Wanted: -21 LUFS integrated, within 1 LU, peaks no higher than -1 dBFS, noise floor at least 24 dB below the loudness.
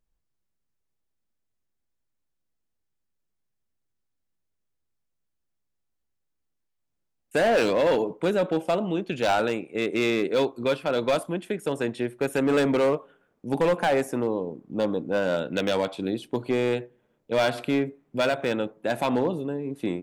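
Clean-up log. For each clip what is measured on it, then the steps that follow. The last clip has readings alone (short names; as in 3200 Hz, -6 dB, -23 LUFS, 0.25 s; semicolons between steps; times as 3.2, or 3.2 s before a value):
clipped 1.4%; flat tops at -17.0 dBFS; loudness -26.0 LUFS; peak -17.0 dBFS; loudness target -21.0 LUFS
-> clip repair -17 dBFS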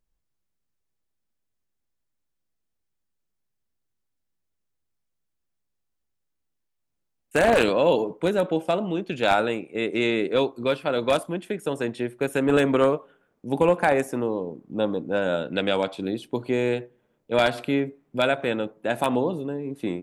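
clipped 0.0%; loudness -24.5 LUFS; peak -8.0 dBFS; loudness target -21.0 LUFS
-> gain +3.5 dB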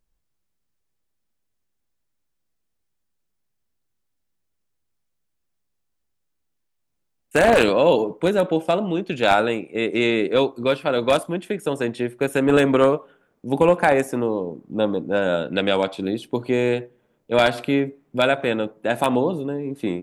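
loudness -21.0 LUFS; peak -4.5 dBFS; noise floor -74 dBFS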